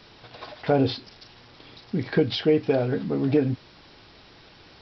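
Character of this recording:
background noise floor −52 dBFS
spectral slope −6.0 dB per octave

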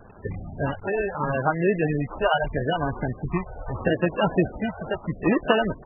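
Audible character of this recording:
a quantiser's noise floor 8 bits, dither none
phaser sweep stages 4, 0.77 Hz, lowest notch 270–3,100 Hz
aliases and images of a low sample rate 2,200 Hz, jitter 0%
MP3

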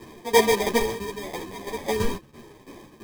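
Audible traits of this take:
phaser sweep stages 6, 0.82 Hz, lowest notch 620–2,100 Hz
tremolo saw down 3 Hz, depth 75%
aliases and images of a low sample rate 1,400 Hz, jitter 0%
a shimmering, thickened sound

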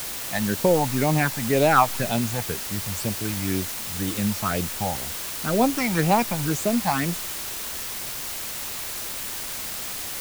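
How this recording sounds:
phaser sweep stages 8, 2 Hz, lowest notch 390–1,700 Hz
a quantiser's noise floor 6 bits, dither triangular

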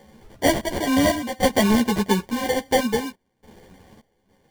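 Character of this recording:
sample-and-hold tremolo, depth 95%
aliases and images of a low sample rate 1,300 Hz, jitter 0%
a shimmering, thickened sound

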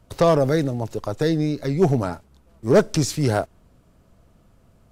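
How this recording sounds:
background noise floor −57 dBFS
spectral slope −6.5 dB per octave

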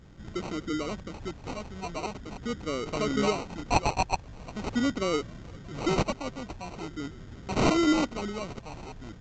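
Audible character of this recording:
phaser sweep stages 2, 0.43 Hz, lowest notch 350–1,400 Hz
aliases and images of a low sample rate 1,700 Hz, jitter 0%
mu-law

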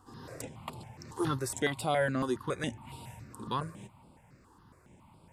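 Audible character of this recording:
notches that jump at a steady rate 7.2 Hz 610–6,300 Hz

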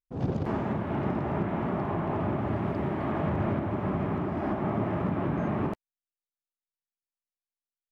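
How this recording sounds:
background noise floor −96 dBFS
spectral slope −6.0 dB per octave

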